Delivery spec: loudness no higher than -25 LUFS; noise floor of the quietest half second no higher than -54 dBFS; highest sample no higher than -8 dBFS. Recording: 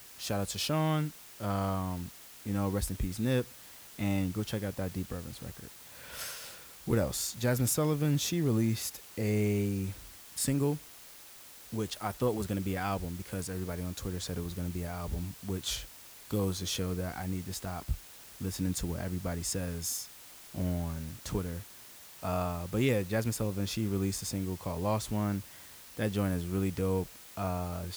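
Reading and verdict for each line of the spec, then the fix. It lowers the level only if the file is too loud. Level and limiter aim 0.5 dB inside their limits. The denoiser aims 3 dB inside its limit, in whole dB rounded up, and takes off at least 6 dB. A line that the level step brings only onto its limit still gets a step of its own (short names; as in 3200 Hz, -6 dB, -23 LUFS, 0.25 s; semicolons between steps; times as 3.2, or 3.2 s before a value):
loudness -33.5 LUFS: OK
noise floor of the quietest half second -51 dBFS: fail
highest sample -17.0 dBFS: OK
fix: denoiser 6 dB, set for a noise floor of -51 dBFS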